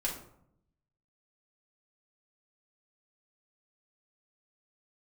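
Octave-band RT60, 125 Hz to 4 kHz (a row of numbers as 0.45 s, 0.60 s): 1.2 s, 1.0 s, 0.75 s, 0.70 s, 0.50 s, 0.35 s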